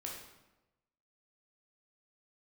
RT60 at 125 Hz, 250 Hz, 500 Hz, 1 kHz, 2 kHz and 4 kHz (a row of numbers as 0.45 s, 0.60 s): 1.2 s, 1.1 s, 1.1 s, 1.0 s, 0.85 s, 0.75 s